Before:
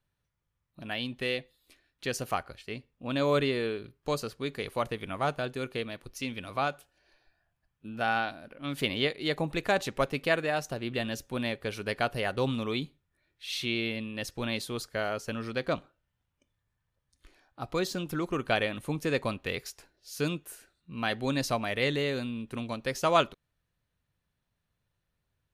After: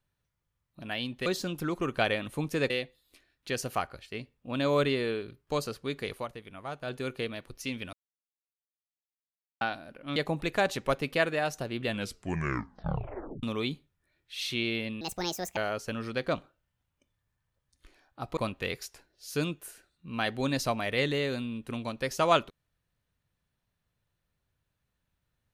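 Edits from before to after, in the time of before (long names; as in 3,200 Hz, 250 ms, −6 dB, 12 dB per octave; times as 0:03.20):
0:04.69–0:05.50: duck −9.5 dB, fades 0.14 s
0:06.49–0:08.17: silence
0:08.72–0:09.27: remove
0:10.97: tape stop 1.57 s
0:14.12–0:14.97: play speed 152%
0:17.77–0:19.21: move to 0:01.26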